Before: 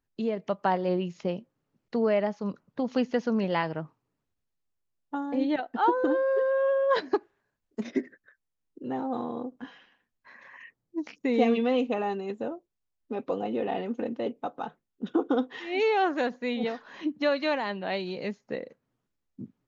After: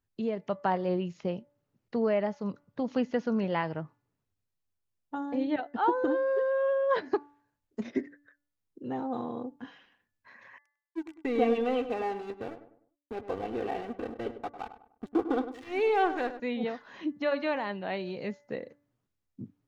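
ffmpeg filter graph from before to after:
ffmpeg -i in.wav -filter_complex "[0:a]asettb=1/sr,asplit=3[link_01][link_02][link_03];[link_01]atrim=end=10.584[link_04];[link_02]atrim=start=10.58:end=16.4,asetpts=PTS-STARTPTS,afade=type=in:duration=0.004:curve=qsin,afade=type=out:start_time=5.816:duration=0.004:curve=qsin,aeval=exprs='sgn(val(0))*max(abs(val(0))-0.0119,0)':channel_layout=same,aecho=1:1:2.6:0.38,atrim=end_sample=256662,asplit=2[link_05][link_06];[link_06]adelay=100,lowpass=frequency=1500:poles=1,volume=-10.5dB,asplit=2[link_07][link_08];[link_08]adelay=100,lowpass=frequency=1500:poles=1,volume=0.39,asplit=2[link_09][link_10];[link_10]adelay=100,lowpass=frequency=1500:poles=1,volume=0.39,asplit=2[link_11][link_12];[link_12]adelay=100,lowpass=frequency=1500:poles=1,volume=0.39[link_13];[link_05][link_07][link_09][link_11][link_13]amix=inputs=5:normalize=0,atrim=end_sample=256662[link_14];[link_03]atrim=start=16.396[link_15];[link_04][link_14]acrossfade=duration=0.004:curve1=hsin:curve2=qsin[link_16];[link_16][link_15]acrossfade=duration=0.004:curve1=qsin:curve2=hsin,bandreject=frequency=289.1:width_type=h:width=4,bandreject=frequency=578.2:width_type=h:width=4,bandreject=frequency=867.3:width_type=h:width=4,bandreject=frequency=1156.4:width_type=h:width=4,bandreject=frequency=1445.5:width_type=h:width=4,bandreject=frequency=1734.6:width_type=h:width=4,bandreject=frequency=2023.7:width_type=h:width=4,acrossover=split=3300[link_17][link_18];[link_18]acompressor=threshold=-55dB:ratio=4:attack=1:release=60[link_19];[link_17][link_19]amix=inputs=2:normalize=0,equalizer=frequency=100:width_type=o:width=0.63:gain=8.5,volume=-2.5dB" out.wav

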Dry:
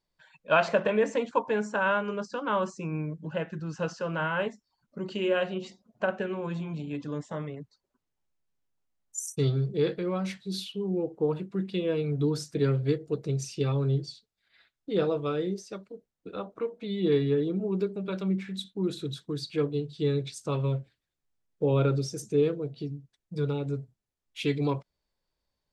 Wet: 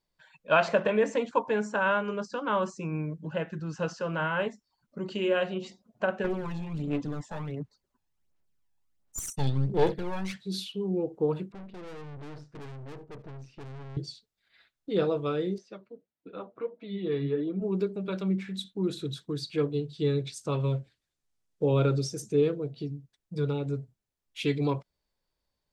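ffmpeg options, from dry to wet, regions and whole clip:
ffmpeg -i in.wav -filter_complex "[0:a]asettb=1/sr,asplit=3[link_01][link_02][link_03];[link_01]atrim=end=6.244[link_04];[link_02]atrim=start=6.24:end=10.36,asetpts=PTS-STARTPTS,afade=type=in:duration=0.004:curve=qsin,afade=type=out:start_time=4.116:duration=0.004:curve=qsin,aeval=exprs='clip(val(0),-1,0.0141)':channel_layout=same,aphaser=in_gain=1:out_gain=1:delay=1.2:decay=0.53:speed=1.4:type=sinusoidal[link_05];[link_03]atrim=start=10.356[link_06];[link_04][link_05]acrossfade=duration=0.004:curve1=hsin:curve2=qsin[link_07];[link_07][link_06]acrossfade=duration=0.004:curve1=qsin:curve2=hsin,asettb=1/sr,asplit=3[link_08][link_09][link_10];[link_08]atrim=end=11.524[link_11];[link_09]atrim=start=11.52:end=13.97,asetpts=PTS-STARTPTS,afade=type=in:duration=0.004:curve=qsin,afade=type=out:start_time=2.446:duration=0.004:curve=qsin,lowpass=1700,aeval=exprs='(tanh(126*val(0)+0.55)-tanh(0.55))/126':channel_layout=same,aecho=1:1:75:0.0944,atrim=end_sample=108045[link_12];[link_10]atrim=start=13.966[link_13];[link_11][link_12]acrossfade=duration=0.004:curve1=hsin:curve2=qsin[link_14];[link_14][link_13]acrossfade=duration=0.004:curve1=qsin:curve2=hsin,asettb=1/sr,asplit=3[link_15][link_16][link_17];[link_15]atrim=end=15.584[link_18];[link_16]atrim=start=15.58:end=17.62,asetpts=PTS-STARTPTS,afade=type=in:duration=0.004:curve=qsin,afade=type=out:start_time=2.036:duration=0.004:curve=qsin,highpass=100,lowpass=3400,flanger=delay=3:depth=5.6:regen=41:speed=1.6:shape=sinusoidal[link_19];[link_17]atrim=start=17.616[link_20];[link_18][link_19]acrossfade=duration=0.004:curve1=hsin:curve2=qsin[link_21];[link_21][link_20]acrossfade=duration=0.004:curve1=qsin:curve2=hsin,asettb=1/sr,asplit=3[link_22][link_23][link_24];[link_22]atrim=end=20.604[link_25];[link_23]atrim=start=20.6:end=22.08,asetpts=PTS-STARTPTS,afade=type=in:duration=0.004:curve=qsin,afade=type=out:start_time=1.476:duration=0.004:curve=qsin,lowpass=10000,bass=frequency=250:gain=0,treble=frequency=4000:gain=5[link_26];[link_24]atrim=start=22.076[link_27];[link_25][link_26]acrossfade=duration=0.004:curve1=hsin:curve2=qsin[link_28];[link_28][link_27]acrossfade=duration=0.004:curve1=qsin:curve2=hsin" out.wav

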